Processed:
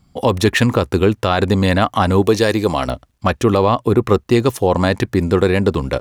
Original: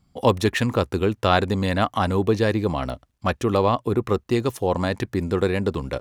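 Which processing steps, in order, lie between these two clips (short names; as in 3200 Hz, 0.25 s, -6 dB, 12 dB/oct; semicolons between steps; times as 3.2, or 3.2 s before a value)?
2.22–2.88 tone controls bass -6 dB, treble +8 dB; limiter -11 dBFS, peak gain reduction 8 dB; gain +8 dB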